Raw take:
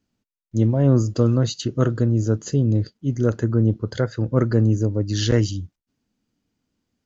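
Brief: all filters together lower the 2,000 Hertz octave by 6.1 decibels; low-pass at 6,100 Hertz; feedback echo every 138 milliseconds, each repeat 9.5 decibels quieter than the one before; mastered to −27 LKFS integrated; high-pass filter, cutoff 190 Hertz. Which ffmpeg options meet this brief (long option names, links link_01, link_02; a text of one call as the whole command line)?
ffmpeg -i in.wav -af "highpass=190,lowpass=6100,equalizer=frequency=2000:width_type=o:gain=-8.5,aecho=1:1:138|276|414|552:0.335|0.111|0.0365|0.012,volume=-2.5dB" out.wav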